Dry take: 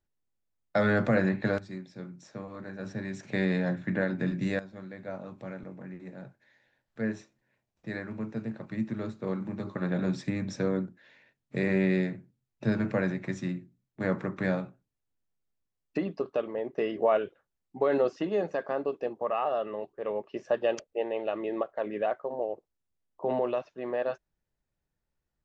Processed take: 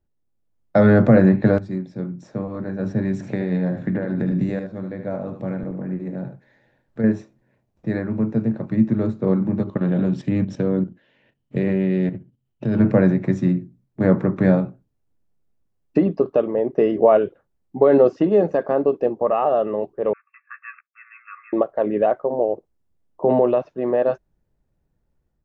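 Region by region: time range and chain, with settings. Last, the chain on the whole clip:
0:03.13–0:07.04: downward compressor, threshold −32 dBFS + floating-point word with a short mantissa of 8 bits + single-tap delay 76 ms −8 dB
0:09.63–0:12.80: parametric band 3,000 Hz +14.5 dB 0.26 octaves + output level in coarse steps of 11 dB
0:20.13–0:21.53: mu-law and A-law mismatch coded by A + linear-phase brick-wall band-pass 1,100–2,700 Hz + double-tracking delay 14 ms −8 dB
whole clip: tilt shelving filter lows +8 dB, about 1,100 Hz; automatic gain control gain up to 5.5 dB; level +1.5 dB

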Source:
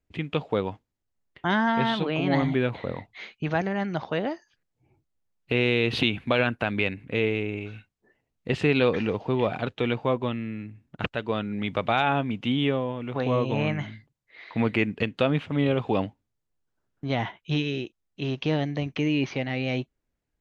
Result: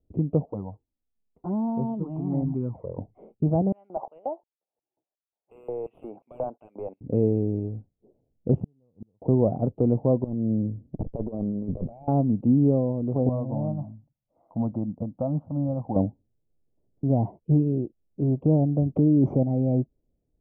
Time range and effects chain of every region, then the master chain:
0:00.45–0:02.98: low shelf with overshoot 790 Hz −7 dB, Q 1.5 + flanger swept by the level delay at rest 4.7 ms, full sweep at −22 dBFS
0:03.72–0:07.01: auto-filter high-pass square 2.8 Hz 850–2,700 Hz + hard clipping −21 dBFS + Butterworth band-reject 5,100 Hz, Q 1
0:08.60–0:09.22: low-pass filter 2,500 Hz + parametric band 420 Hz −13.5 dB 1.4 octaves + gate with flip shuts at −23 dBFS, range −42 dB
0:10.24–0:12.08: lower of the sound and its delayed copy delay 0.36 ms + compressor whose output falls as the input rises −34 dBFS, ratio −0.5
0:13.29–0:15.96: low-shelf EQ 200 Hz −9.5 dB + phaser with its sweep stopped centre 1,000 Hz, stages 4
0:18.95–0:19.43: parametric band 2,700 Hz −7.5 dB 0.31 octaves + envelope flattener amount 70%
whole clip: inverse Chebyshev low-pass filter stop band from 1,600 Hz, stop band 50 dB; dynamic equaliser 420 Hz, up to −6 dB, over −39 dBFS, Q 1.7; level +7.5 dB

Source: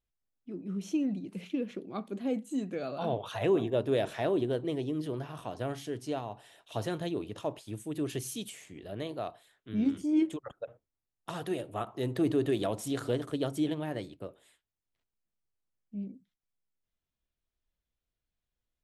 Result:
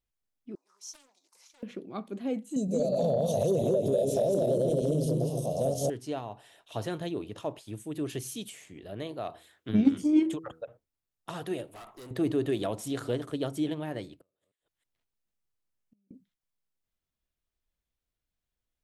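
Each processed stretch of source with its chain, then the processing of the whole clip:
0:00.55–0:01.63: four-pole ladder high-pass 880 Hz, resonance 65% + high shelf with overshoot 4,000 Hz +12 dB, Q 3 + highs frequency-modulated by the lows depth 0.49 ms
0:02.56–0:05.90: feedback delay that plays each chunk backwards 119 ms, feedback 56%, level −1 dB + drawn EQ curve 110 Hz 0 dB, 160 Hz +11 dB, 330 Hz −3 dB, 570 Hz +13 dB, 830 Hz −6 dB, 1,500 Hz −29 dB, 4,300 Hz +3 dB, 6,100 Hz +13 dB + downward compressor, threshold −22 dBFS
0:09.24–0:10.62: high-pass filter 55 Hz + hum removal 81.08 Hz, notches 6 + transient designer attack +11 dB, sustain +5 dB
0:11.67–0:12.11: spectral tilt +2.5 dB per octave + tube saturation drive 44 dB, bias 0.45
0:14.21–0:16.11: delay that plays each chunk backwards 157 ms, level −12.5 dB + downward compressor 16 to 1, threshold −49 dBFS + gate with flip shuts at −53 dBFS, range −25 dB
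whole clip: no processing

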